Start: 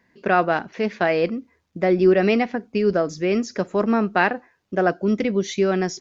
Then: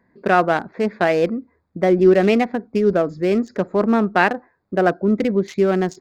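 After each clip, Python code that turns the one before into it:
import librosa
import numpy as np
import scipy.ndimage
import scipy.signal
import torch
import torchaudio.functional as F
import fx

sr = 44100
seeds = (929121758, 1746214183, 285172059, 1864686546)

y = fx.wiener(x, sr, points=15)
y = F.gain(torch.from_numpy(y), 3.0).numpy()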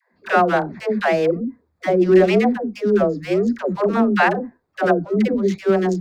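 y = fx.dispersion(x, sr, late='lows', ms=137.0, hz=440.0)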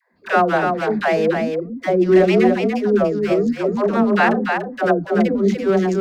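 y = x + 10.0 ** (-5.0 / 20.0) * np.pad(x, (int(290 * sr / 1000.0), 0))[:len(x)]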